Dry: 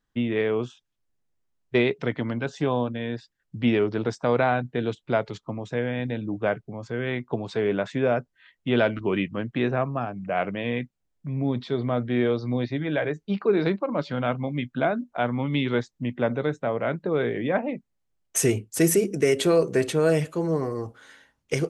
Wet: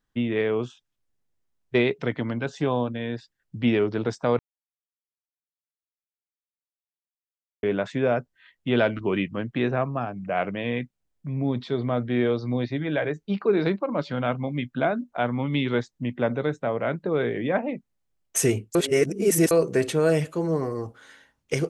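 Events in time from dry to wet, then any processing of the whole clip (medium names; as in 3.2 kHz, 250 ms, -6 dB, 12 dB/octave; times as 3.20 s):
4.39–7.63 s: mute
18.75–19.51 s: reverse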